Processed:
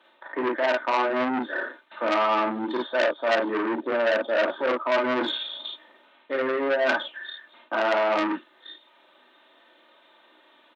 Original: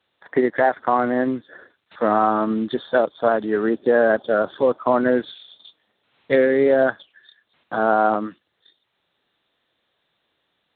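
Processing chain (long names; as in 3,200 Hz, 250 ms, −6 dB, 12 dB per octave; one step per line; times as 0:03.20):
high-shelf EQ 3,200 Hz −11.5 dB
in parallel at −2.5 dB: brickwall limiter −17 dBFS, peak gain reduction 10.5 dB
on the sum: comb filter 3.3 ms, depth 64%
reversed playback
downward compressor 8 to 1, threshold −28 dBFS, peak gain reduction 19 dB
reversed playback
Bessel high-pass filter 350 Hz, order 4
parametric band 1,000 Hz +3.5 dB 0.4 octaves
ambience of single reflections 35 ms −5.5 dB, 51 ms −4 dB
saturating transformer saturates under 2,300 Hz
level +9 dB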